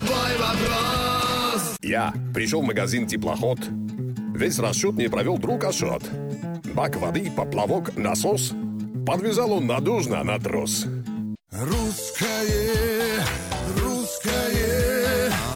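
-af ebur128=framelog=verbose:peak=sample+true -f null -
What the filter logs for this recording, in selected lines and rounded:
Integrated loudness:
  I:         -24.2 LUFS
  Threshold: -34.2 LUFS
Loudness range:
  LRA:         1.9 LU
  Threshold: -44.5 LUFS
  LRA low:   -25.3 LUFS
  LRA high:  -23.3 LUFS
Sample peak:
  Peak:      -12.3 dBFS
True peak:
  Peak:      -12.1 dBFS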